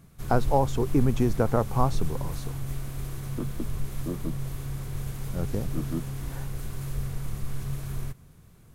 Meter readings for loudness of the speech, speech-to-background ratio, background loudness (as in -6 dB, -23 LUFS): -29.0 LUFS, 6.5 dB, -35.5 LUFS